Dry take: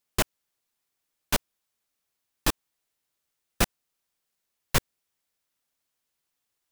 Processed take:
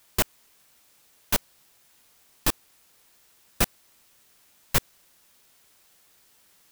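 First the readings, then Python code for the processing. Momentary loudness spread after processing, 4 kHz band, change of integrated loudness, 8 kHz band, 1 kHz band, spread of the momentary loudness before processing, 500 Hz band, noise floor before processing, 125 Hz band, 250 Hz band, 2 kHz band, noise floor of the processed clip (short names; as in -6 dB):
1 LU, -0.5 dB, +1.5 dB, +1.5 dB, -1.0 dB, 1 LU, -1.0 dB, -82 dBFS, -1.0 dB, -1.0 dB, -0.5 dB, -61 dBFS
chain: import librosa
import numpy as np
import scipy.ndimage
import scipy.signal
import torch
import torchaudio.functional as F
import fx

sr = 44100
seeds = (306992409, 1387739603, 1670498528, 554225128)

p1 = fx.high_shelf(x, sr, hz=12000.0, db=9.0)
p2 = fx.quant_dither(p1, sr, seeds[0], bits=8, dither='triangular')
p3 = p1 + (p2 * librosa.db_to_amplitude(-9.0))
y = p3 * librosa.db_to_amplitude(-3.5)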